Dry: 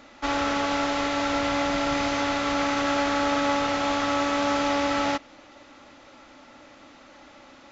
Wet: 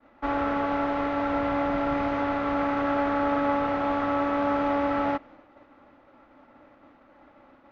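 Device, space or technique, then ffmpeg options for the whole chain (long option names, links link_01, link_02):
hearing-loss simulation: -af "lowpass=1500,agate=range=-33dB:threshold=-46dB:ratio=3:detection=peak"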